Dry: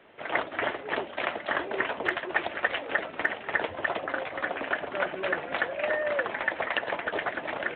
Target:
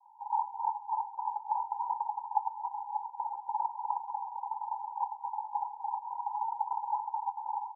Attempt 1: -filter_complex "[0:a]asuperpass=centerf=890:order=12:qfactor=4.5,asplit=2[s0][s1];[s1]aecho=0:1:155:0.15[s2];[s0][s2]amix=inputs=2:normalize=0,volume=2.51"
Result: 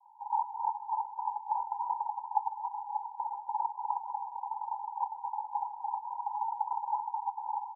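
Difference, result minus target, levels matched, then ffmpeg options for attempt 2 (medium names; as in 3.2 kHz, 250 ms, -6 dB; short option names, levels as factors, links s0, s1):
echo 72 ms late
-filter_complex "[0:a]asuperpass=centerf=890:order=12:qfactor=4.5,asplit=2[s0][s1];[s1]aecho=0:1:83:0.15[s2];[s0][s2]amix=inputs=2:normalize=0,volume=2.51"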